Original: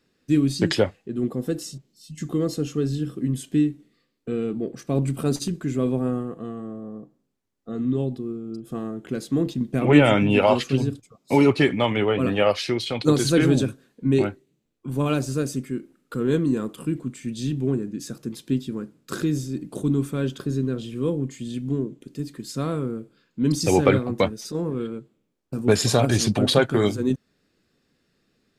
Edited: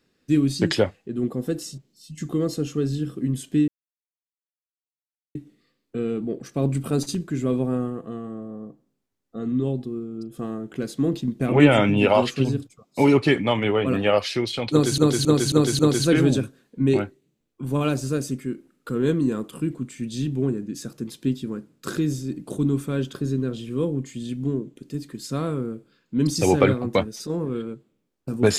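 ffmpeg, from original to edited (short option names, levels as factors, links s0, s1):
-filter_complex "[0:a]asplit=6[s0][s1][s2][s3][s4][s5];[s0]atrim=end=3.68,asetpts=PTS-STARTPTS,afade=t=out:st=3.676:d=0.004:c=hsin,apad=pad_dur=1.67[s6];[s1]atrim=start=3.68:end=13.312,asetpts=PTS-STARTPTS,afade=t=in:d=0.004:c=hsin[s7];[s2]atrim=start=13.038:end=13.312[s8];[s3]atrim=start=13.038:end=13.312[s9];[s4]atrim=start=13.038:end=13.312[s10];[s5]atrim=start=13.038[s11];[s6][s7]concat=n=2:v=0:a=1[s12];[s12][s8]acrossfade=d=0.004:c1=hsin:c2=hsin[s13];[s13][s9]acrossfade=d=0.004:c1=hsin:c2=hsin[s14];[s14][s10]acrossfade=d=0.004:c1=hsin:c2=hsin[s15];[s15][s11]acrossfade=d=0.004:c1=hsin:c2=hsin"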